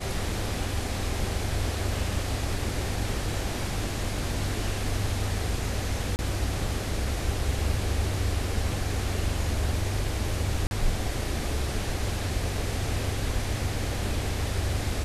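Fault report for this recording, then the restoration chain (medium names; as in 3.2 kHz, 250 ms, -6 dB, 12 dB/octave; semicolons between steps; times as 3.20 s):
6.16–6.19 s: dropout 29 ms
10.67–10.71 s: dropout 41 ms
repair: interpolate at 6.16 s, 29 ms; interpolate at 10.67 s, 41 ms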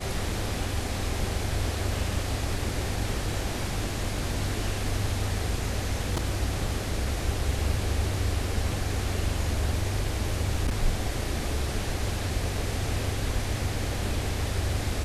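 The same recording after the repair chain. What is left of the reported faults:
nothing left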